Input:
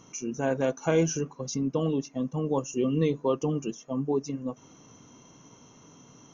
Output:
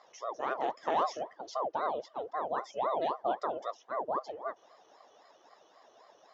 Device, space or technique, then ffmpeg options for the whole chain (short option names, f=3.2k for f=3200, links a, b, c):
voice changer toy: -af "aeval=exprs='val(0)*sin(2*PI*550*n/s+550*0.7/3.8*sin(2*PI*3.8*n/s))':c=same,highpass=560,equalizer=f=640:t=q:w=4:g=3,equalizer=f=1.4k:t=q:w=4:g=-6,equalizer=f=2.4k:t=q:w=4:g=-9,lowpass=f=4.3k:w=0.5412,lowpass=f=4.3k:w=1.3066"